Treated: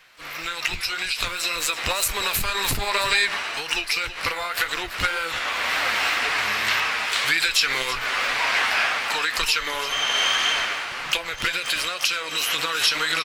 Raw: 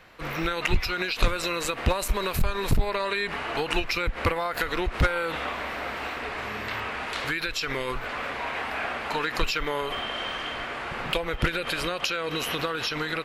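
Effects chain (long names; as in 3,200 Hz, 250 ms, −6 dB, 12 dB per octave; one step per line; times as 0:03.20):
tilt shelving filter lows −9.5 dB, about 890 Hz
pitch-shifted copies added +12 semitones −11 dB
single-tap delay 331 ms −13.5 dB
automatic gain control gain up to 13 dB
flanger 1.9 Hz, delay 6 ms, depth 5.2 ms, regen +53%
level −1.5 dB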